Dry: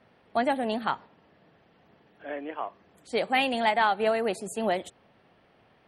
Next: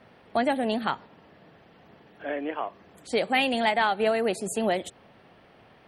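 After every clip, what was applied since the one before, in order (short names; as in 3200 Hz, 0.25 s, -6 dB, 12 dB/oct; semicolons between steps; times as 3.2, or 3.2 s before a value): dynamic EQ 1000 Hz, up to -4 dB, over -40 dBFS, Q 1.2; in parallel at +1 dB: compressor, threshold -34 dBFS, peak gain reduction 12.5 dB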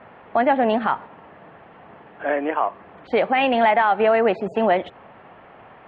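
LPF 2900 Hz 24 dB/oct; bell 1000 Hz +9 dB 1.7 oct; limiter -13.5 dBFS, peak gain reduction 8.5 dB; gain +4.5 dB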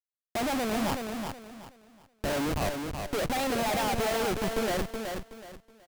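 Wiener smoothing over 41 samples; Schmitt trigger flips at -32 dBFS; feedback echo 0.373 s, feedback 28%, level -5.5 dB; gain -5 dB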